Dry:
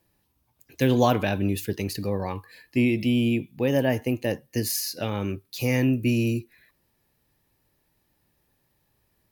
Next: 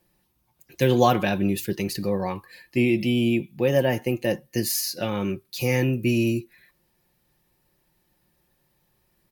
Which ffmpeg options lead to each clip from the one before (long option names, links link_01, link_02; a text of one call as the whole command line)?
ffmpeg -i in.wav -af "aecho=1:1:5.6:0.52,volume=1dB" out.wav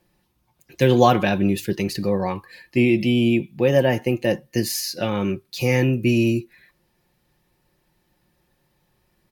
ffmpeg -i in.wav -af "highshelf=frequency=9800:gain=-10,volume=3.5dB" out.wav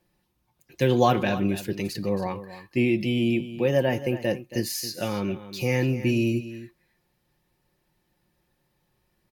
ffmpeg -i in.wav -af "aecho=1:1:275:0.2,volume=-5dB" out.wav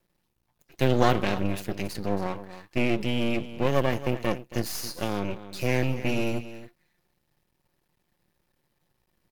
ffmpeg -i in.wav -af "aeval=exprs='max(val(0),0)':channel_layout=same,volume=1.5dB" out.wav